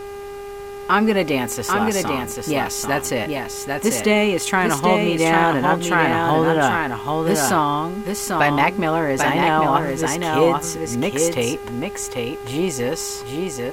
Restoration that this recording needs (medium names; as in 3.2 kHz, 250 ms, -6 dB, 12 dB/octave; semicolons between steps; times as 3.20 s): de-hum 402.5 Hz, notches 7; noise print and reduce 30 dB; inverse comb 793 ms -4 dB